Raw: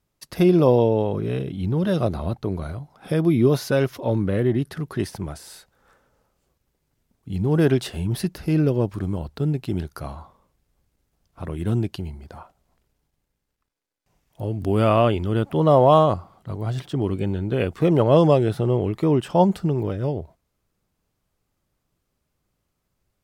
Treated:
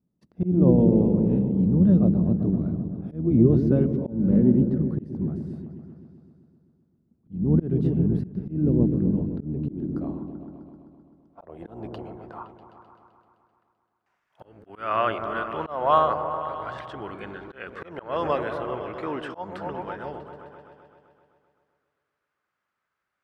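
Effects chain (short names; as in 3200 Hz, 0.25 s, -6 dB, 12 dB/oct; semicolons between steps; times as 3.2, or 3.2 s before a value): octaver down 1 oct, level -3 dB; band-pass sweep 210 Hz -> 1500 Hz, 9.29–13; repeats that get brighter 0.129 s, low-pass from 400 Hz, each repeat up 1 oct, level -6 dB; auto swell 0.256 s; gain +6.5 dB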